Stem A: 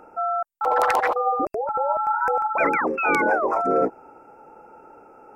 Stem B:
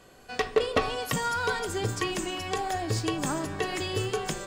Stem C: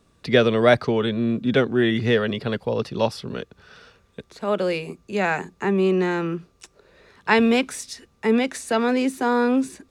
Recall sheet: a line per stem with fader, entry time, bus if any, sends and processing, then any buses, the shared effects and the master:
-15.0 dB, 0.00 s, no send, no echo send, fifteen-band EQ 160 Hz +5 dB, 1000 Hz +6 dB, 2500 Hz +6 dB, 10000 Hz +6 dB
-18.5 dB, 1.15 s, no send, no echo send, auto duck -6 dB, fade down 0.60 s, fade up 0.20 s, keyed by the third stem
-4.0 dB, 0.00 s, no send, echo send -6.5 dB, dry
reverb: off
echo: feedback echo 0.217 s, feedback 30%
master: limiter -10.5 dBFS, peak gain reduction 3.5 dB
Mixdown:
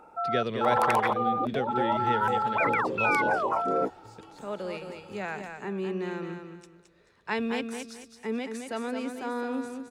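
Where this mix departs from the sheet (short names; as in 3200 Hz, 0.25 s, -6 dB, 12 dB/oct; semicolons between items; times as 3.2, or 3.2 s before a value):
stem A -15.0 dB -> -8.0 dB; stem C -4.0 dB -> -12.5 dB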